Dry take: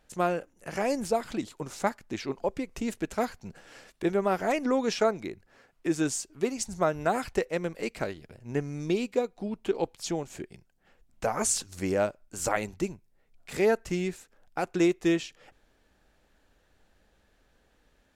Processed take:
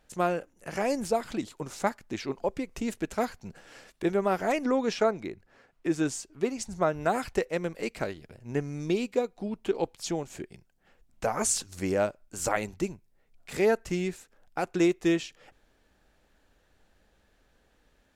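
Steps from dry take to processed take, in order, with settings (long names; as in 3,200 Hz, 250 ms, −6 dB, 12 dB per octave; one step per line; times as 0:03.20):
0:04.71–0:07.03: high-shelf EQ 5,200 Hz −6.5 dB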